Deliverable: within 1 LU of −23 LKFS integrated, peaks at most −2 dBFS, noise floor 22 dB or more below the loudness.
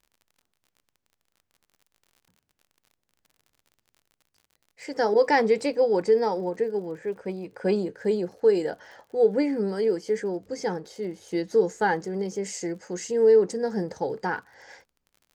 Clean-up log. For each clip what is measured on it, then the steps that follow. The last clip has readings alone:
crackle rate 47 per second; integrated loudness −25.5 LKFS; sample peak −10.0 dBFS; target loudness −23.0 LKFS
→ click removal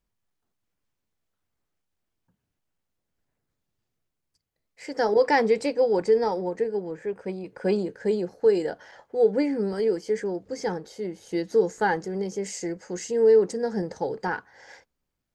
crackle rate 0.065 per second; integrated loudness −25.5 LKFS; sample peak −10.0 dBFS; target loudness −23.0 LKFS
→ level +2.5 dB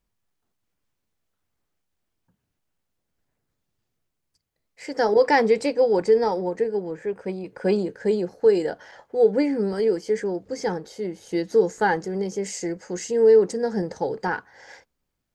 integrated loudness −23.0 LKFS; sample peak −7.5 dBFS; background noise floor −79 dBFS

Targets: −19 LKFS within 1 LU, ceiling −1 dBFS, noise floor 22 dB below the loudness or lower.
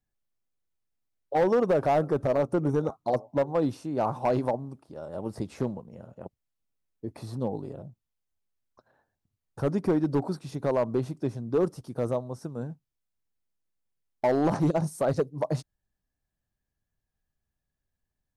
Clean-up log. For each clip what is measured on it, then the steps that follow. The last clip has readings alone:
share of clipped samples 0.9%; peaks flattened at −18.0 dBFS; integrated loudness −28.5 LKFS; sample peak −18.0 dBFS; target loudness −19.0 LKFS
→ clipped peaks rebuilt −18 dBFS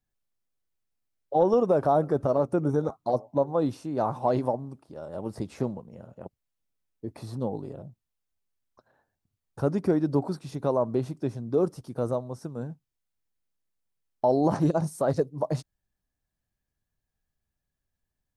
share of clipped samples 0.0%; integrated loudness −27.5 LKFS; sample peak −10.5 dBFS; target loudness −19.0 LKFS
→ level +8.5 dB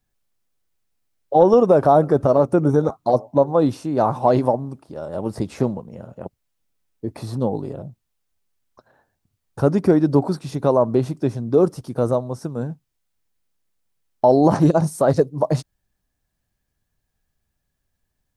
integrated loudness −19.0 LKFS; sample peak −2.0 dBFS; background noise floor −76 dBFS

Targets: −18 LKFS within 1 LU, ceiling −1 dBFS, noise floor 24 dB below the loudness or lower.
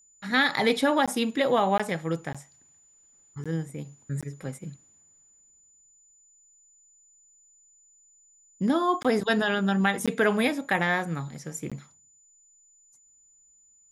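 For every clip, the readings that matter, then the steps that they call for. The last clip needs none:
number of dropouts 8; longest dropout 16 ms; interfering tone 7,000 Hz; level of the tone −57 dBFS; integrated loudness −26.0 LKFS; sample peak −10.5 dBFS; target loudness −18.0 LKFS
→ repair the gap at 0:01.06/0:01.78/0:02.33/0:03.44/0:04.21/0:09.03/0:10.06/0:11.70, 16 ms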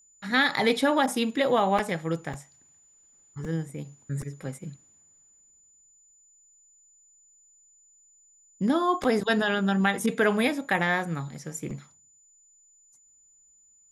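number of dropouts 0; interfering tone 7,000 Hz; level of the tone −57 dBFS
→ notch filter 7,000 Hz, Q 30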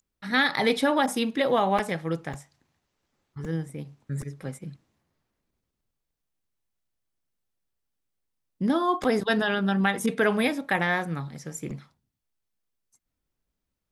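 interfering tone none found; integrated loudness −26.0 LKFS; sample peak −10.5 dBFS; target loudness −18.0 LKFS
→ level +8 dB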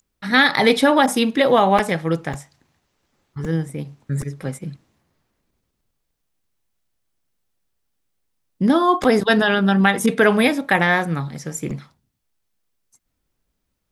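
integrated loudness −18.0 LKFS; sample peak −2.5 dBFS; background noise floor −75 dBFS

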